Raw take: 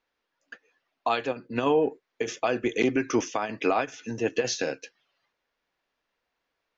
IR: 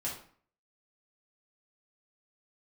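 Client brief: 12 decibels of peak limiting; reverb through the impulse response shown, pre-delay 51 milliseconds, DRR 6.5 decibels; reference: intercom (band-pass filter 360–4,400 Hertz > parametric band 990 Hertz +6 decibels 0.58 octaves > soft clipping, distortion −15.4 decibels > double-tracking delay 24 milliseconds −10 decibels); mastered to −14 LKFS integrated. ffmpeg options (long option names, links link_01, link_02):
-filter_complex "[0:a]alimiter=level_in=0.5dB:limit=-24dB:level=0:latency=1,volume=-0.5dB,asplit=2[link_01][link_02];[1:a]atrim=start_sample=2205,adelay=51[link_03];[link_02][link_03]afir=irnorm=-1:irlink=0,volume=-9dB[link_04];[link_01][link_04]amix=inputs=2:normalize=0,highpass=360,lowpass=4400,equalizer=frequency=990:width_type=o:width=0.58:gain=6,asoftclip=threshold=-28dB,asplit=2[link_05][link_06];[link_06]adelay=24,volume=-10dB[link_07];[link_05][link_07]amix=inputs=2:normalize=0,volume=23.5dB"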